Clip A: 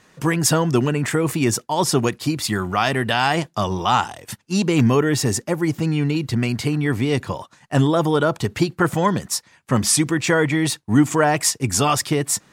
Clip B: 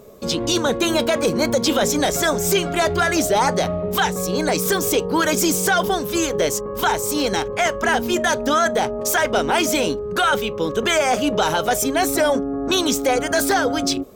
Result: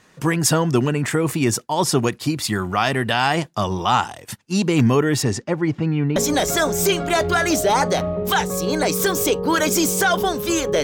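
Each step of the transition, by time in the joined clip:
clip A
0:05.22–0:06.16: low-pass filter 6,500 Hz → 1,700 Hz
0:06.16: continue with clip B from 0:01.82

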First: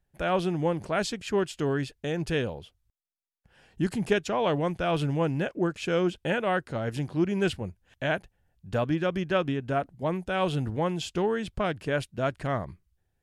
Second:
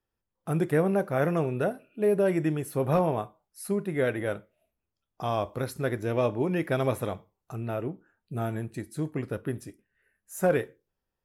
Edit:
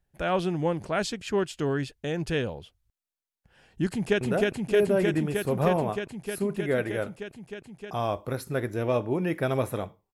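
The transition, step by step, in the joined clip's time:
first
0:03.91–0:04.21: delay throw 310 ms, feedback 85%, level −1 dB
0:04.21: continue with second from 0:01.50

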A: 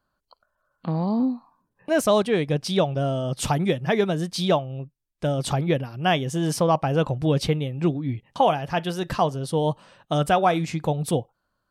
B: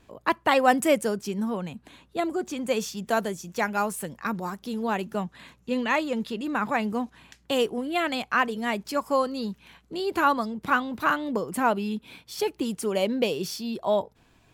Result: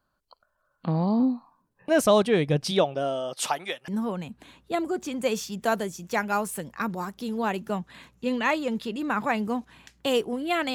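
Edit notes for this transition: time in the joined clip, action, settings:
A
0:02.70–0:03.88: high-pass filter 210 Hz → 1,100 Hz
0:03.88: continue with B from 0:01.33

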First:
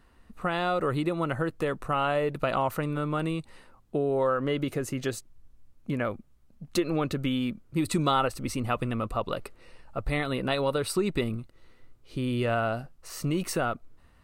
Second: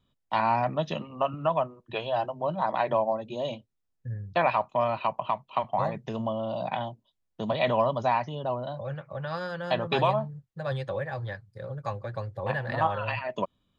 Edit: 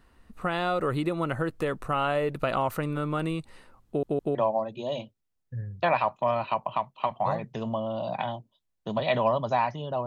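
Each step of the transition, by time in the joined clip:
first
0:03.87: stutter in place 0.16 s, 3 plays
0:04.35: continue with second from 0:02.88

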